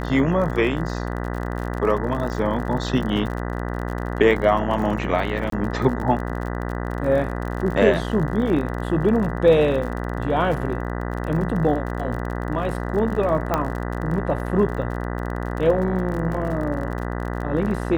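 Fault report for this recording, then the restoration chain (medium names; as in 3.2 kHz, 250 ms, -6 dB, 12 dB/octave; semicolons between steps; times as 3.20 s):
buzz 60 Hz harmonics 33 -27 dBFS
crackle 45 per s -29 dBFS
5.50–5.52 s: dropout 23 ms
13.54 s: pop -7 dBFS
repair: de-click; de-hum 60 Hz, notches 33; interpolate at 5.50 s, 23 ms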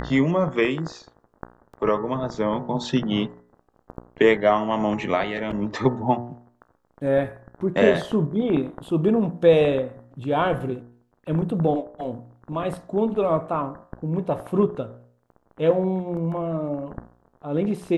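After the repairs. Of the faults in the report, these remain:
nothing left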